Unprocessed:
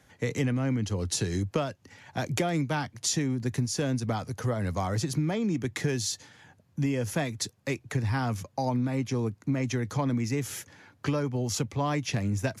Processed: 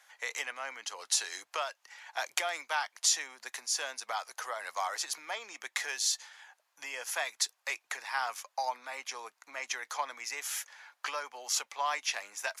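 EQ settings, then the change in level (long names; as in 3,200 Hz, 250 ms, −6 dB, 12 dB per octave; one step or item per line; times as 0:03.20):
high-pass filter 800 Hz 24 dB per octave
+2.0 dB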